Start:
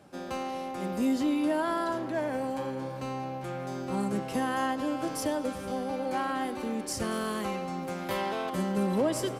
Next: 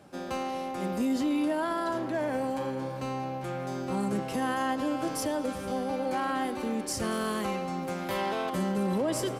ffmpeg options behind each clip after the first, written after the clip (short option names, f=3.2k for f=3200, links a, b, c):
-af "alimiter=limit=-23dB:level=0:latency=1:release=14,volume=1.5dB"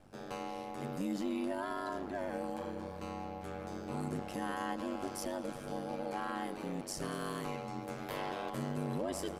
-af "aeval=exprs='val(0)+0.00178*(sin(2*PI*50*n/s)+sin(2*PI*2*50*n/s)/2+sin(2*PI*3*50*n/s)/3+sin(2*PI*4*50*n/s)/4+sin(2*PI*5*50*n/s)/5)':c=same,aeval=exprs='val(0)*sin(2*PI*48*n/s)':c=same,volume=-5.5dB"